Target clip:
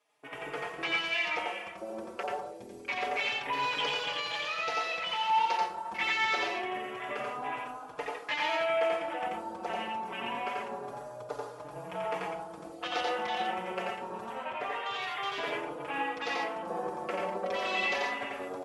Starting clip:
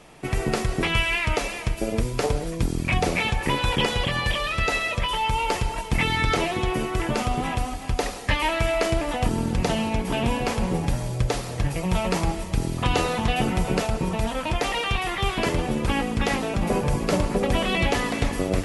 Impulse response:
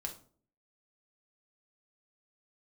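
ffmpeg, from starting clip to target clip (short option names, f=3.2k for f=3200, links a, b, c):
-filter_complex "[0:a]asettb=1/sr,asplit=3[a][b][c];[a]atrim=end=14.354[d];[b]atrim=start=14.35:end=14.94,asetpts=PTS-STARTPTS,afade=t=in:d=0.004:c=qsin,afade=t=out:st=0.586:d=0.004:c=qsin,highshelf=f=3.4k:g=-7[e];[c]atrim=start=14.936[f];[d][e]acrossfade=d=0.004:c1=hsin:c2=qsin[g];[g][f]acrossfade=d=0.004:c1=qsin:c2=hsin,afwtdn=0.0224,highpass=560,asplit=2[h][i];[1:a]atrim=start_sample=2205,adelay=87[j];[i][j]afir=irnorm=-1:irlink=0,volume=1dB[k];[h][k]amix=inputs=2:normalize=0,asplit=2[l][m];[m]adelay=4.4,afreqshift=0.26[n];[l][n]amix=inputs=2:normalize=1,volume=-5dB"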